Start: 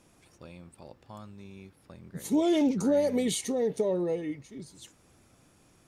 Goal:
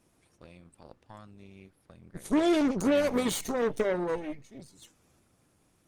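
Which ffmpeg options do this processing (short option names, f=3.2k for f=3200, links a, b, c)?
-af "aeval=exprs='0.158*(cos(1*acos(clip(val(0)/0.158,-1,1)))-cos(1*PI/2))+0.0158*(cos(2*acos(clip(val(0)/0.158,-1,1)))-cos(2*PI/2))+0.00562*(cos(3*acos(clip(val(0)/0.158,-1,1)))-cos(3*PI/2))+0.00708*(cos(7*acos(clip(val(0)/0.158,-1,1)))-cos(7*PI/2))+0.02*(cos(8*acos(clip(val(0)/0.158,-1,1)))-cos(8*PI/2))':c=same" -ar 48000 -c:a libopus -b:a 24k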